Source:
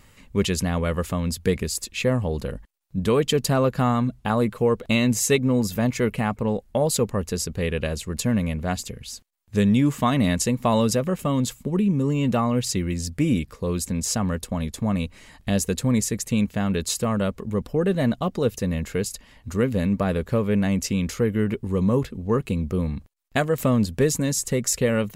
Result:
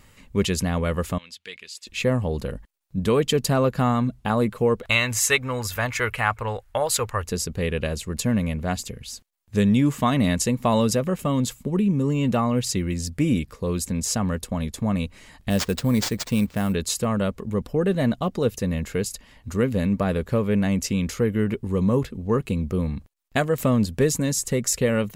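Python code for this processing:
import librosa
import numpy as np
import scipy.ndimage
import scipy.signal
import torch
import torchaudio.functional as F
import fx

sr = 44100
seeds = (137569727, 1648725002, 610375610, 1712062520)

y = fx.bandpass_q(x, sr, hz=3000.0, q=1.9, at=(1.18, 1.87))
y = fx.curve_eq(y, sr, hz=(110.0, 170.0, 1400.0, 4500.0), db=(0, -18, 10, 2), at=(4.83, 7.24))
y = fx.sample_hold(y, sr, seeds[0], rate_hz=12000.0, jitter_pct=0, at=(15.49, 16.72), fade=0.02)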